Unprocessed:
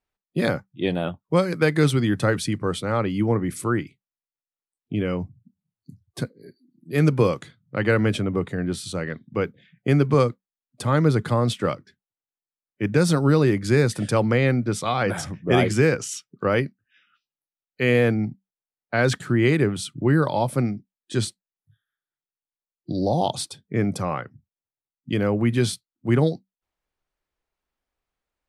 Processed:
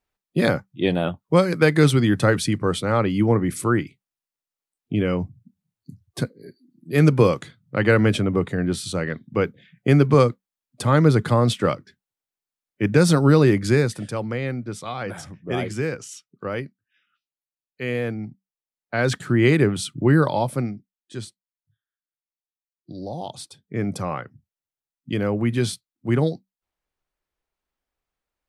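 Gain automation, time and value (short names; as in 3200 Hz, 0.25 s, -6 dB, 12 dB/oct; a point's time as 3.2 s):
13.64 s +3 dB
14.11 s -7 dB
18.29 s -7 dB
19.48 s +2.5 dB
20.22 s +2.5 dB
21.24 s -10 dB
23.26 s -10 dB
23.94 s -1 dB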